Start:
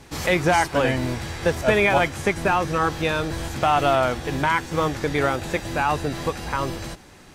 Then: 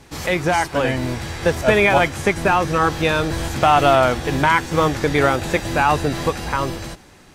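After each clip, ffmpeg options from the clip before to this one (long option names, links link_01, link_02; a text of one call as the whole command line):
ffmpeg -i in.wav -af "dynaudnorm=framelen=310:gausssize=7:maxgain=7dB" out.wav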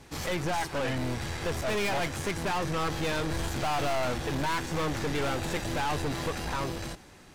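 ffmpeg -i in.wav -af "aeval=exprs='(tanh(15.8*val(0)+0.45)-tanh(0.45))/15.8':channel_layout=same,volume=-3.5dB" out.wav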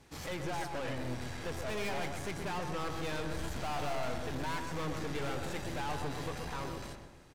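ffmpeg -i in.wav -filter_complex "[0:a]asplit=2[link_01][link_02];[link_02]adelay=127,lowpass=frequency=1800:poles=1,volume=-5dB,asplit=2[link_03][link_04];[link_04]adelay=127,lowpass=frequency=1800:poles=1,volume=0.5,asplit=2[link_05][link_06];[link_06]adelay=127,lowpass=frequency=1800:poles=1,volume=0.5,asplit=2[link_07][link_08];[link_08]adelay=127,lowpass=frequency=1800:poles=1,volume=0.5,asplit=2[link_09][link_10];[link_10]adelay=127,lowpass=frequency=1800:poles=1,volume=0.5,asplit=2[link_11][link_12];[link_12]adelay=127,lowpass=frequency=1800:poles=1,volume=0.5[link_13];[link_01][link_03][link_05][link_07][link_09][link_11][link_13]amix=inputs=7:normalize=0,volume=-8.5dB" out.wav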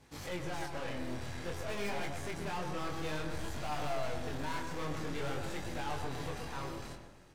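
ffmpeg -i in.wav -af "flanger=delay=20:depth=7.8:speed=0.53,volume=1.5dB" out.wav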